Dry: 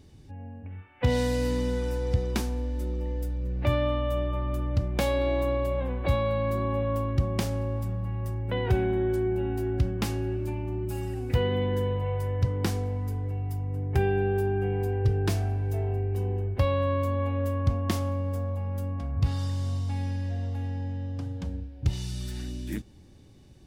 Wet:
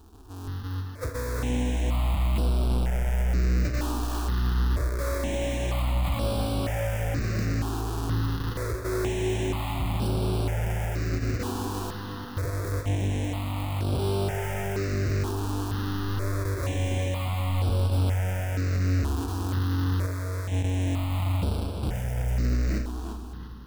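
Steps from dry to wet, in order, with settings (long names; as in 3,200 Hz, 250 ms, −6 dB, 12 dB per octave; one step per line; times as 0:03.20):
each half-wave held at its own peak
0:20.06–0:20.52: low-shelf EQ 390 Hz −8 dB
automatic gain control gain up to 3.5 dB
brickwall limiter −24.5 dBFS, peak gain reduction 39.5 dB
0:11.90–0:12.37: Chebyshev high-pass with heavy ripple 160 Hz, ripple 9 dB
tape delay 346 ms, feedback 39%, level −3.5 dB, low-pass 5,200 Hz
four-comb reverb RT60 2.8 s, combs from 29 ms, DRR 8 dB
step-sequenced phaser 2.1 Hz 560–6,600 Hz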